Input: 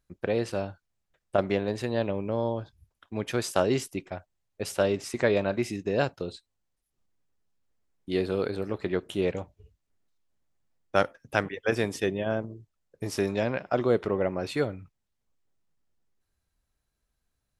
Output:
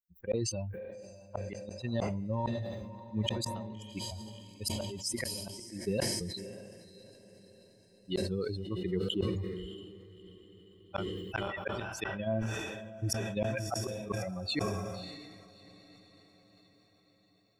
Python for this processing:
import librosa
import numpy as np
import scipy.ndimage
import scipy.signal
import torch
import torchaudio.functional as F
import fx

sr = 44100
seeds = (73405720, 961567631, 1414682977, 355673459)

p1 = fx.bin_expand(x, sr, power=3.0)
p2 = fx.bass_treble(p1, sr, bass_db=0, treble_db=3)
p3 = fx.over_compress(p2, sr, threshold_db=-39.0, ratio=-1.0)
p4 = p2 + (p3 * 10.0 ** (0.5 / 20.0))
p5 = fx.gate_flip(p4, sr, shuts_db=-21.0, range_db=-38)
p6 = p5 + fx.echo_diffused(p5, sr, ms=630, feedback_pct=54, wet_db=-14.5, dry=0)
y = fx.sustainer(p6, sr, db_per_s=29.0)